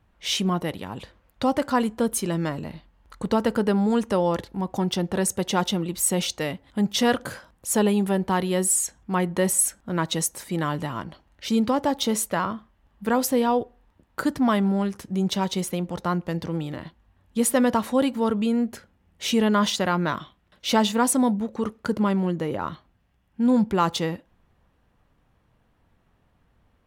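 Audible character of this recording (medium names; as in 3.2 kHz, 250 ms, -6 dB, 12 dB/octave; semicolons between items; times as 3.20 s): noise floor -66 dBFS; spectral tilt -4.5 dB/octave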